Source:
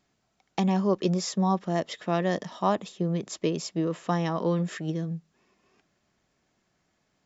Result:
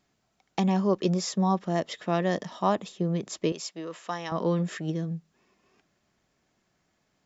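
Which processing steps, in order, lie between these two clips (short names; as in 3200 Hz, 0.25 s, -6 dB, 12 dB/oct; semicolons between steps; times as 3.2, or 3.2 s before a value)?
3.52–4.32 HPF 1000 Hz 6 dB/oct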